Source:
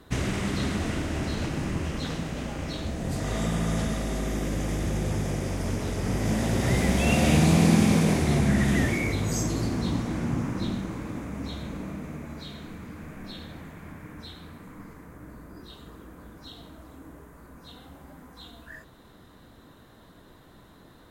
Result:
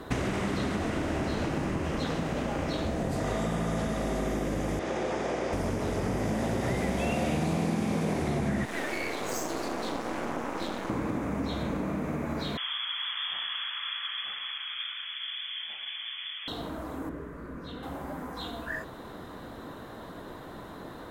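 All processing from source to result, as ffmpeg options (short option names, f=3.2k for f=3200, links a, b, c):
-filter_complex "[0:a]asettb=1/sr,asplit=3[a][b][c];[a]atrim=end=4.794[d];[b]atrim=start=4.79:end=5.53,asetpts=PTS-STARTPTS,afade=t=in:d=0.004:c=qsin,afade=t=out:st=0.736:d=0.004:c=qsin,highpass=360,lowpass=5.8k,aeval=exprs='val(0)+0.00562*(sin(2*PI*60*n/s)+sin(2*PI*2*60*n/s)/2+sin(2*PI*3*60*n/s)/3+sin(2*PI*4*60*n/s)/4+sin(2*PI*5*60*n/s)/5)':c=same[e];[c]atrim=start=5.526[f];[d][e]acrossfade=d=0.004:c1=hsin:c2=qsin[g];[g][f]acrossfade=d=0.004:c1=qsin:c2=hsin,asettb=1/sr,asplit=3[h][i][j];[h]atrim=end=8.654[k];[i]atrim=start=8.65:end=10.9,asetpts=PTS-STARTPTS,afade=t=in:d=0.004:c=qsin,afade=t=out:st=2.246:d=0.004:c=qsin,highpass=380,aeval=exprs='max(val(0),0)':c=same[l];[j]atrim=start=10.896[m];[k][l]acrossfade=d=0.004:c1=hsin:c2=qsin[n];[n][m]acrossfade=d=0.004:c1=qsin:c2=hsin,asettb=1/sr,asplit=3[o][p][q];[o]atrim=end=12.574[r];[p]atrim=start=12.57:end=16.48,asetpts=PTS-STARTPTS,afade=t=in:d=0.004:c=qsin,afade=t=out:st=3.906:d=0.004:c=qsin,lowpass=f=3k:t=q:w=0.5098,lowpass=f=3k:t=q:w=0.6013,lowpass=f=3k:t=q:w=0.9,lowpass=f=3k:t=q:w=2.563,afreqshift=-3500,lowshelf=f=750:t=q:w=1.5:g=-11.5[s];[q]atrim=start=16.476[t];[r][s]acrossfade=d=0.004:c1=hsin:c2=qsin[u];[u][t]acrossfade=d=0.004:c1=qsin:c2=hsin,asettb=1/sr,asplit=3[v][w][x];[v]atrim=end=17.094[y];[w]atrim=start=17.09:end=17.83,asetpts=PTS-STARTPTS,afade=t=in:d=0.004:c=qsin,afade=t=out:st=0.736:d=0.004:c=qsin,lowpass=f=2.2k:p=1,equalizer=f=800:t=o:w=0.72:g=-11.5[z];[x]atrim=start=17.826[aa];[y][z]acrossfade=d=0.004:c1=hsin:c2=qsin[ab];[ab][aa]acrossfade=d=0.004:c1=qsin:c2=hsin,equalizer=f=670:w=0.35:g=9,acompressor=threshold=-32dB:ratio=5,volume=4dB"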